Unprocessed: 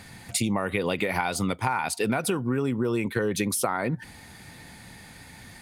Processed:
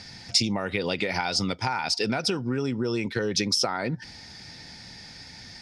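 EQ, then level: synth low-pass 5300 Hz, resonance Q 9.7; notch 1100 Hz, Q 7; -1.5 dB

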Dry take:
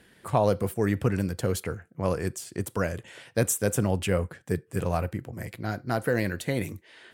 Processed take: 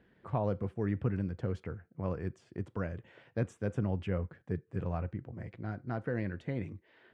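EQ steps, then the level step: dynamic EQ 4100 Hz, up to -5 dB, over -59 dBFS, Q 7.1; dynamic EQ 580 Hz, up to -4 dB, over -39 dBFS, Q 0.84; tape spacing loss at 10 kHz 37 dB; -5.0 dB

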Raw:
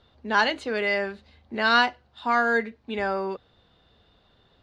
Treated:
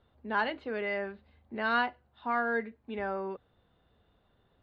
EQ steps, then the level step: air absorption 370 m; -6.0 dB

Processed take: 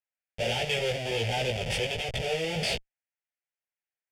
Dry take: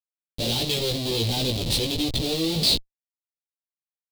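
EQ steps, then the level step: LPF 2700 Hz 12 dB/oct; tilt +3 dB/oct; fixed phaser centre 1100 Hz, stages 6; +5.5 dB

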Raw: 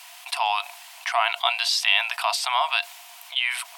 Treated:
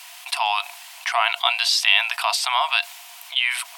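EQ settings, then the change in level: HPF 750 Hz 6 dB/oct; +3.5 dB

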